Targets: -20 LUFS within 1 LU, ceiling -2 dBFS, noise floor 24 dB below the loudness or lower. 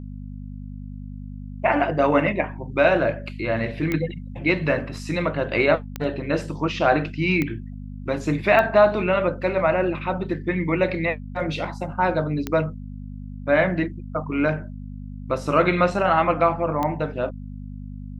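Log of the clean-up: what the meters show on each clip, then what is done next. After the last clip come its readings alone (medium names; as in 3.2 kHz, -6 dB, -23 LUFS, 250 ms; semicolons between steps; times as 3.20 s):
clicks found 6; hum 50 Hz; highest harmonic 250 Hz; hum level -32 dBFS; loudness -22.5 LUFS; peak level -3.0 dBFS; loudness target -20.0 LUFS
-> de-click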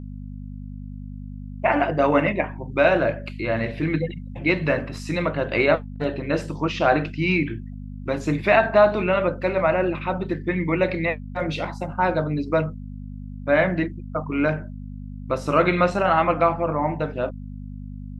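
clicks found 0; hum 50 Hz; highest harmonic 250 Hz; hum level -32 dBFS
-> de-hum 50 Hz, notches 5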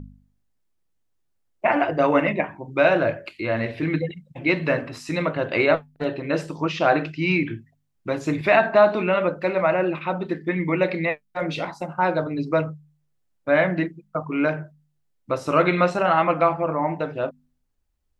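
hum not found; loudness -22.5 LUFS; peak level -3.5 dBFS; loudness target -20.0 LUFS
-> trim +2.5 dB; peak limiter -2 dBFS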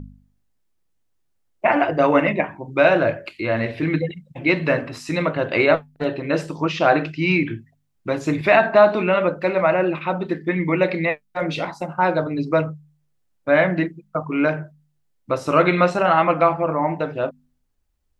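loudness -20.0 LUFS; peak level -2.0 dBFS; noise floor -68 dBFS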